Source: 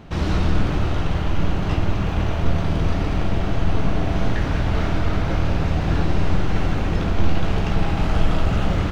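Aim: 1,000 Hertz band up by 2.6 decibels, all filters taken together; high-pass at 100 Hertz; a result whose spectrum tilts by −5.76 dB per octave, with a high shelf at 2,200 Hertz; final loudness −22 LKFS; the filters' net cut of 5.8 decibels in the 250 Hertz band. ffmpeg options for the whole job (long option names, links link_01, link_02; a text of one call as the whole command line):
ffmpeg -i in.wav -af "highpass=100,equalizer=frequency=250:width_type=o:gain=-9,equalizer=frequency=1000:width_type=o:gain=5.5,highshelf=frequency=2200:gain=-7,volume=5dB" out.wav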